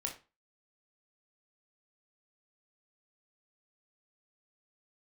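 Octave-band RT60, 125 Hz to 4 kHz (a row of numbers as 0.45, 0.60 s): 0.35, 0.35, 0.30, 0.30, 0.30, 0.25 s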